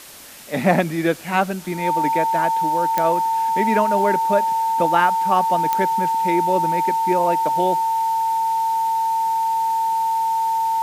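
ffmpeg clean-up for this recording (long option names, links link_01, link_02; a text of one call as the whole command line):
ffmpeg -i in.wav -af "adeclick=threshold=4,bandreject=frequency=900:width=30,afwtdn=0.01" out.wav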